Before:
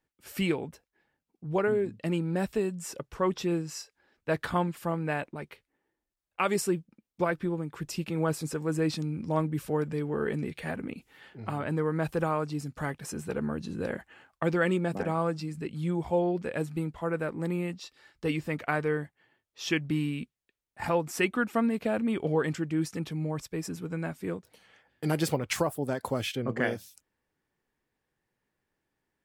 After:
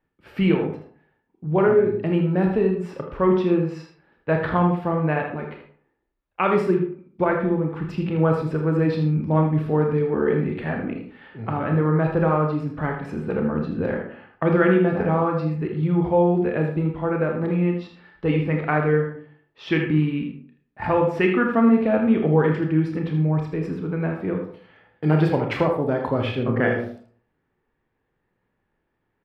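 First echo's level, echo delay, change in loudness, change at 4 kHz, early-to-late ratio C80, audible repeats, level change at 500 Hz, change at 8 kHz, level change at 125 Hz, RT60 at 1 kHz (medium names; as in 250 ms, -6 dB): -9.0 dB, 79 ms, +9.0 dB, -0.5 dB, 9.5 dB, 1, +9.0 dB, under -15 dB, +10.5 dB, 0.50 s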